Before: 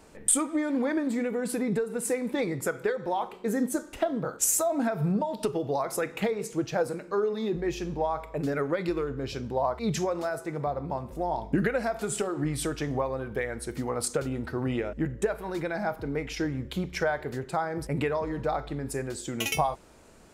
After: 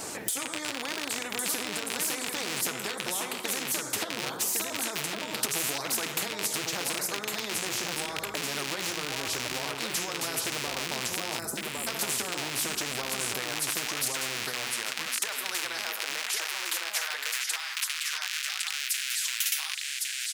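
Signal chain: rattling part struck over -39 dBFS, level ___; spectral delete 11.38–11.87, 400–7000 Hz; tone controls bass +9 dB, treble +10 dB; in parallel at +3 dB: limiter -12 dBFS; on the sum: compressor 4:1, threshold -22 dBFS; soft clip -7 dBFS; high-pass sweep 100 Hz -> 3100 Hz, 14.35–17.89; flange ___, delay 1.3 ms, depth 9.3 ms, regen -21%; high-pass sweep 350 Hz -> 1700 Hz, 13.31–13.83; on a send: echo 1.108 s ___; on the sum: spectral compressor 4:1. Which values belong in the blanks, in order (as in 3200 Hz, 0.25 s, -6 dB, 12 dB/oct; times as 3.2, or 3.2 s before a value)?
-23 dBFS, 0.85 Hz, -8.5 dB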